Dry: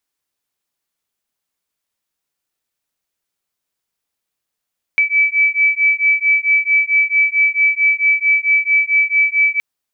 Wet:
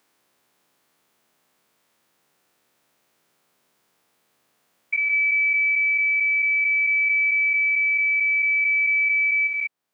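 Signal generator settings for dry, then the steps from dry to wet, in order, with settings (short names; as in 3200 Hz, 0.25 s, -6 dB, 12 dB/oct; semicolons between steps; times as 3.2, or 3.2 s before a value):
beating tones 2300 Hz, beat 4.5 Hz, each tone -14.5 dBFS 4.62 s
stepped spectrum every 0.2 s; high shelf 2400 Hz -11 dB; three-band squash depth 70%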